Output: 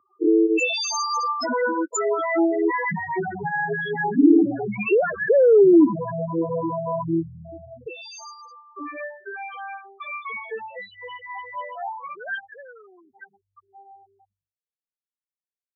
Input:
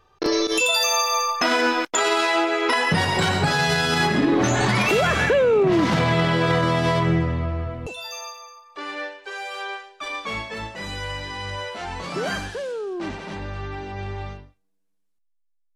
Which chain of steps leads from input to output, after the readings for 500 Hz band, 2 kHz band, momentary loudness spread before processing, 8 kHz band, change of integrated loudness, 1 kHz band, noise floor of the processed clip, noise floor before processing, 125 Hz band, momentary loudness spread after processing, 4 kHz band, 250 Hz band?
+1.5 dB, -5.5 dB, 15 LU, n/a, 0.0 dB, -4.0 dB, under -85 dBFS, -67 dBFS, -11.5 dB, 21 LU, -11.0 dB, +3.0 dB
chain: loudest bins only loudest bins 4; dynamic EQ 3800 Hz, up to -5 dB, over -50 dBFS, Q 2.5; high-pass sweep 290 Hz -> 1400 Hz, 9.87–12.79

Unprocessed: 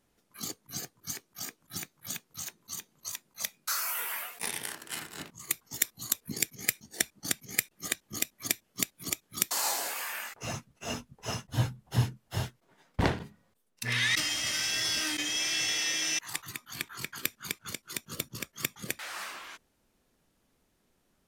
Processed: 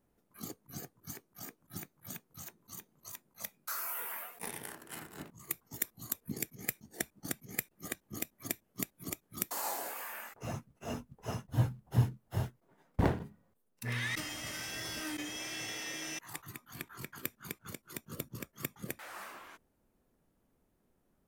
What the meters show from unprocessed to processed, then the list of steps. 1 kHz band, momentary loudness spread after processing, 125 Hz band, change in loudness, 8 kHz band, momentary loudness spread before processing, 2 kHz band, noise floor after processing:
-4.0 dB, 14 LU, -0.5 dB, -7.0 dB, -10.5 dB, 12 LU, -8.5 dB, -76 dBFS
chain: bell 4500 Hz -13 dB 2.8 oct; in parallel at -10 dB: short-mantissa float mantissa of 2-bit; on the sum: gain -3 dB

